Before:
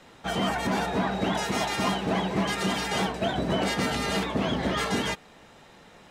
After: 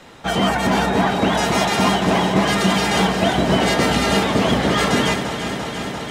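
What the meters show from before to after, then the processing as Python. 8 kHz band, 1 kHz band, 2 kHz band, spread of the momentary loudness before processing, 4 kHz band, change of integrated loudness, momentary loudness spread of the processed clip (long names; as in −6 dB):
+9.5 dB, +10.0 dB, +9.5 dB, 2 LU, +9.5 dB, +9.5 dB, 7 LU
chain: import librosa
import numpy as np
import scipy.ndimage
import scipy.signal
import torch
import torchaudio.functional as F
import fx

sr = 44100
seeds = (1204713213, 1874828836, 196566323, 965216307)

y = fx.echo_alternate(x, sr, ms=172, hz=1200.0, feedback_pct=90, wet_db=-8.5)
y = y * 10.0 ** (8.5 / 20.0)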